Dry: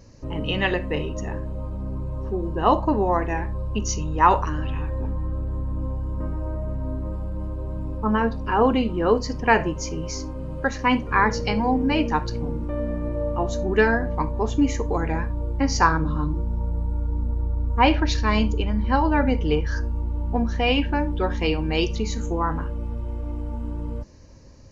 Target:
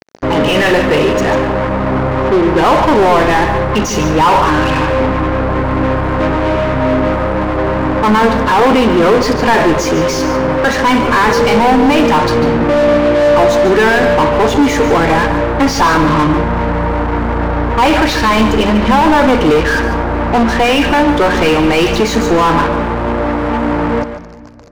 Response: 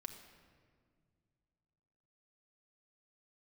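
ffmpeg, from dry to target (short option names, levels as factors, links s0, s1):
-filter_complex "[0:a]acrusher=bits=5:mix=0:aa=0.5,asplit=2[s0][s1];[s1]highpass=f=720:p=1,volume=56.2,asoftclip=type=tanh:threshold=0.668[s2];[s0][s2]amix=inputs=2:normalize=0,lowpass=f=1400:p=1,volume=0.501,asplit=2[s3][s4];[1:a]atrim=start_sample=2205,adelay=145[s5];[s4][s5]afir=irnorm=-1:irlink=0,volume=0.531[s6];[s3][s6]amix=inputs=2:normalize=0,volume=1.26"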